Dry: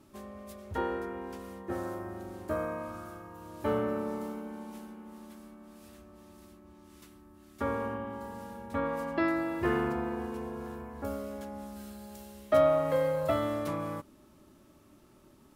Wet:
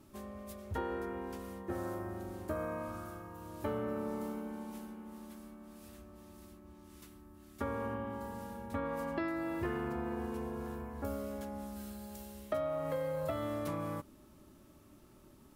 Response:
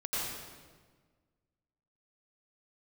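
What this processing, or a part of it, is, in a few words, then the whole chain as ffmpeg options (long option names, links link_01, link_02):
ASMR close-microphone chain: -af "lowshelf=frequency=130:gain=5.5,acompressor=threshold=-31dB:ratio=6,highshelf=frequency=11000:gain=6,volume=-2dB"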